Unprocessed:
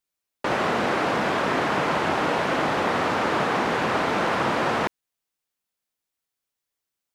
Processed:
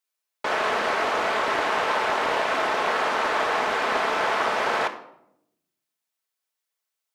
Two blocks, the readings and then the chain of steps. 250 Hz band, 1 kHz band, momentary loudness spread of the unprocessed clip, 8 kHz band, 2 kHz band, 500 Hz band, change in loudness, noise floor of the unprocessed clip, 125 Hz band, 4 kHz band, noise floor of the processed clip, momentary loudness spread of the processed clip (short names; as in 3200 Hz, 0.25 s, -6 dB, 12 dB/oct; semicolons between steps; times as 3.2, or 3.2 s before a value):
-9.5 dB, +0.5 dB, 2 LU, +0.5 dB, +1.0 dB, -1.0 dB, 0.0 dB, -85 dBFS, -15.0 dB, +1.0 dB, -84 dBFS, 3 LU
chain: HPF 520 Hz 12 dB/oct; shoebox room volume 1900 m³, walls furnished, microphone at 1.5 m; Doppler distortion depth 0.32 ms